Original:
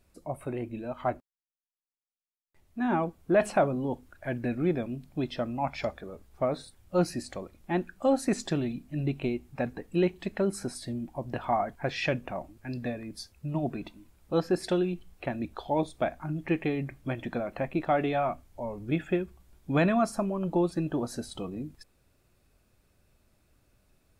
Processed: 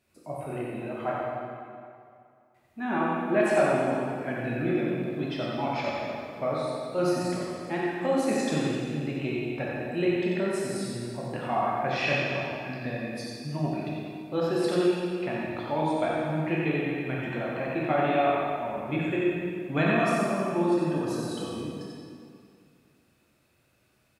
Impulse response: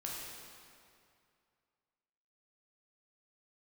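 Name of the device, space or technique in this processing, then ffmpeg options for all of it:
PA in a hall: -filter_complex "[0:a]highpass=110,equalizer=f=2.4k:t=o:w=1.3:g=5,aecho=1:1:90:0.596[a];[1:a]atrim=start_sample=2205[b];[a][b]afir=irnorm=-1:irlink=0"

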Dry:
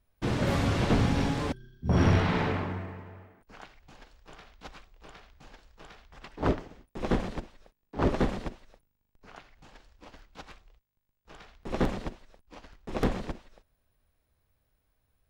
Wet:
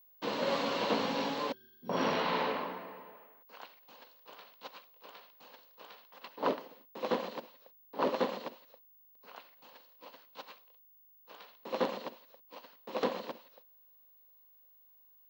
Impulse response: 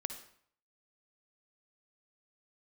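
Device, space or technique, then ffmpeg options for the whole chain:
old television with a line whistle: -filter_complex "[0:a]asettb=1/sr,asplit=3[a][b][c];[a]atrim=end=3.164[d];[b]atrim=start=3.16:end=3.6,asetpts=PTS-STARTPTS,afade=t=in:d=0.004:c=qsin,afade=t=out:st=0.436:d=0.004:c=qsin,highpass=f=290:p=1[e];[c]atrim=start=3.596[f];[d][e]acrossfade=d=0.004:c1=hsin:c2=qsin[g];[g][f]acrossfade=d=0.004:c1=qsin:c2=hsin,highpass=f=230:w=0.5412,highpass=f=230:w=1.3066,equalizer=f=350:t=q:w=4:g=-5,equalizer=f=520:t=q:w=4:g=9,equalizer=f=1k:t=q:w=4:g=9,equalizer=f=2.9k:t=q:w=4:g=6,equalizer=f=4.2k:t=q:w=4:g=9,lowpass=f=6.8k:w=0.5412,lowpass=f=6.8k:w=1.3066,aeval=exprs='val(0)+0.002*sin(2*PI*15625*n/s)':c=same,volume=-5.5dB"

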